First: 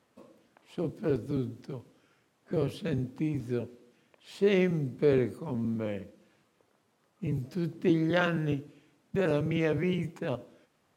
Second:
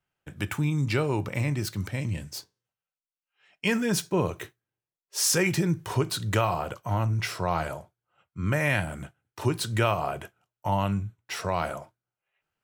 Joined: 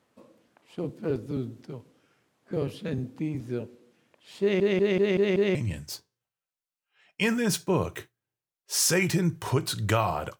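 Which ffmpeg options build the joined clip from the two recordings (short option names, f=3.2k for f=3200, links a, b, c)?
-filter_complex "[0:a]apad=whole_dur=10.39,atrim=end=10.39,asplit=6[a][b][c][d][e][f];[a]atrim=end=4.602[g];[b]atrim=start=4.408:end=4.602[h];[c]atrim=start=4.408:end=4.602[i];[d]atrim=start=4.408:end=4.602[j];[e]atrim=start=4.408:end=4.602[k];[f]atrim=start=4.408:end=4.602[l];[1:a]atrim=start=1.988:end=6.83[m];[g][h]acrossfade=d=0.004:c1=hsin:c2=hsin[n];[n][i]acrossfade=d=0.004:c1=hsin:c2=hsin[o];[o][j]acrossfade=d=0.004:c1=hsin:c2=hsin[p];[p][k]acrossfade=d=0.004:c1=hsin:c2=hsin[q];[q][l]acrossfade=d=0.004:c1=hsin:c2=hsin[r];[r][m]acrossfade=d=0.004:c1=hsin:c2=hsin"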